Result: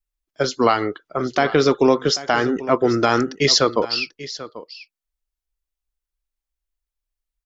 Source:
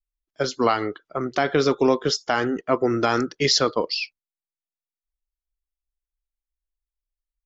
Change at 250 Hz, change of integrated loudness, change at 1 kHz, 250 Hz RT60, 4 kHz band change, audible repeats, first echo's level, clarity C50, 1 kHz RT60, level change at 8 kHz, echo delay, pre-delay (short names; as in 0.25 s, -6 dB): +3.5 dB, +3.5 dB, +3.5 dB, none, +3.5 dB, 1, -16.0 dB, none, none, n/a, 0.789 s, none